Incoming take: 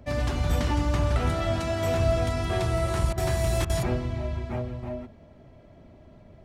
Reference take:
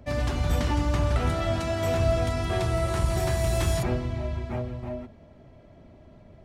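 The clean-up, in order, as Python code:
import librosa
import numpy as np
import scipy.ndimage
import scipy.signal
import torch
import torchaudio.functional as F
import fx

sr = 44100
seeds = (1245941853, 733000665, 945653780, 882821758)

y = fx.fix_interpolate(x, sr, at_s=(3.13, 3.65), length_ms=45.0)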